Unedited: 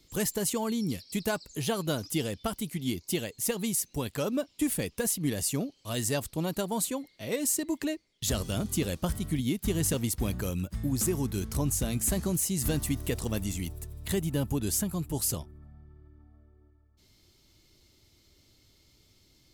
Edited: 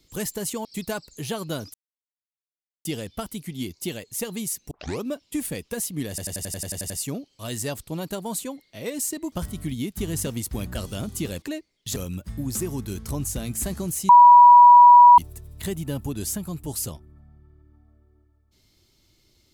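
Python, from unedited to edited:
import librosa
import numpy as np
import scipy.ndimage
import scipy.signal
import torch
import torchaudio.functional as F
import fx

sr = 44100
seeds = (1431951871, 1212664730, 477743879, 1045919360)

y = fx.edit(x, sr, fx.cut(start_s=0.65, length_s=0.38),
    fx.insert_silence(at_s=2.12, length_s=1.11),
    fx.tape_start(start_s=3.98, length_s=0.31),
    fx.stutter(start_s=5.36, slice_s=0.09, count=10),
    fx.swap(start_s=7.78, length_s=0.54, other_s=8.99, other_length_s=1.43),
    fx.bleep(start_s=12.55, length_s=1.09, hz=971.0, db=-6.5), tone=tone)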